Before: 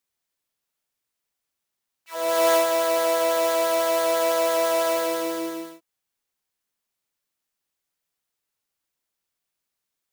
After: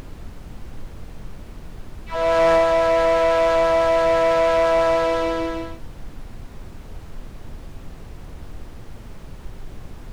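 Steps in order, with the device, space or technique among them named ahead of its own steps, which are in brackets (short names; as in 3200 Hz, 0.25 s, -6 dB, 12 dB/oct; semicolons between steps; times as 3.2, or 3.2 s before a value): aircraft cabin announcement (BPF 380–3200 Hz; soft clip -18.5 dBFS, distortion -16 dB; brown noise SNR 11 dB); gain +7.5 dB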